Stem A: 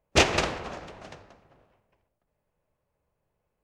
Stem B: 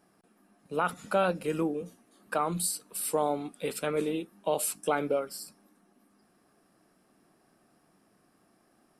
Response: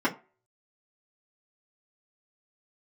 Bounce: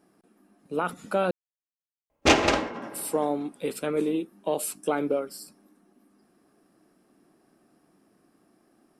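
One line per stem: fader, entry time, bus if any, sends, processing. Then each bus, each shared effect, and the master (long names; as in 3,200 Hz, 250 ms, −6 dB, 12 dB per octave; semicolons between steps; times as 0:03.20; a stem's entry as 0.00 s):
+0.5 dB, 2.10 s, send −14.5 dB, automatic ducking −19 dB, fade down 0.25 s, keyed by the second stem
−1.0 dB, 0.00 s, muted 0:01.31–0:02.82, no send, parametric band 310 Hz +7 dB 1.2 octaves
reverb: on, RT60 0.35 s, pre-delay 3 ms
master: saturating transformer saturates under 660 Hz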